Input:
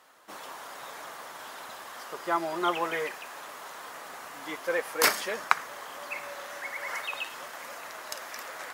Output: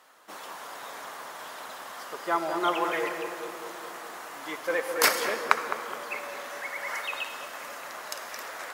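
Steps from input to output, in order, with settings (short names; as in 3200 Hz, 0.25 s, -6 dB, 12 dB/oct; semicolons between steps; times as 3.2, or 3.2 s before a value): low shelf 110 Hz -9.5 dB; darkening echo 0.21 s, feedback 74%, low-pass 860 Hz, level -6 dB; on a send at -10.5 dB: reverb RT60 2.4 s, pre-delay 62 ms; on the sum: gain +1 dB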